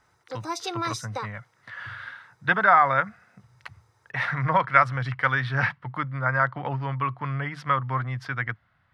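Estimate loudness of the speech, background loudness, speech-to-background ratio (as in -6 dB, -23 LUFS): -24.5 LUFS, -33.0 LUFS, 8.5 dB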